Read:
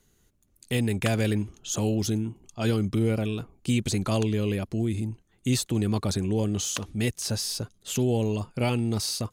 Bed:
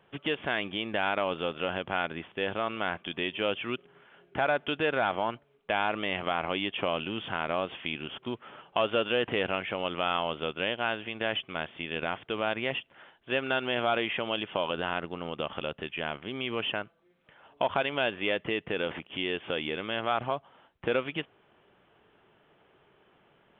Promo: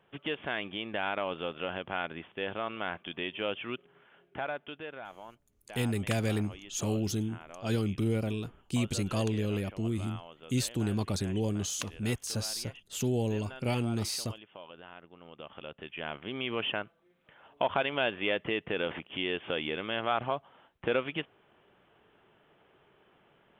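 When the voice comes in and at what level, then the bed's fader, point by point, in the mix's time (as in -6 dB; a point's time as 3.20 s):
5.05 s, -5.0 dB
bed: 4.15 s -4 dB
5.11 s -18 dB
15.04 s -18 dB
16.30 s -1 dB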